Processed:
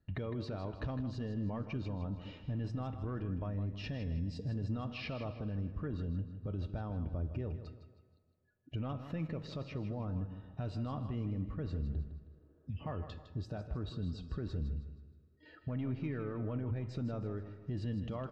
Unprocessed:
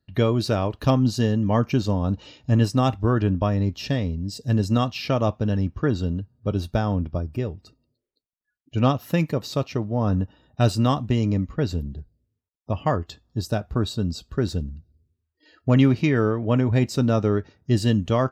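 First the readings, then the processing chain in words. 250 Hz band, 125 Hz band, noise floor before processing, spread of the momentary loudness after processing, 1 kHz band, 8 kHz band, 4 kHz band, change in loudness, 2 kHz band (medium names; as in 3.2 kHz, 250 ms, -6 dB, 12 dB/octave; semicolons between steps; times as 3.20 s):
-17.0 dB, -15.0 dB, -81 dBFS, 6 LU, -20.0 dB, under -25 dB, -19.0 dB, -16.5 dB, -17.5 dB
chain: saturation -8 dBFS, distortion -24 dB; low-pass 2.4 kHz 12 dB/octave; two-slope reverb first 0.56 s, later 2.6 s, from -22 dB, DRR 18.5 dB; compression 3:1, threshold -33 dBFS, peak gain reduction 13.5 dB; bass shelf 82 Hz +6.5 dB; peak limiter -29 dBFS, peak gain reduction 10.5 dB; feedback comb 160 Hz, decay 1.6 s, mix 50%; on a send: feedback delay 158 ms, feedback 38%, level -10.5 dB; on the sum: spectral replace 12.33–12.78 s, 260–1800 Hz before; trim +4.5 dB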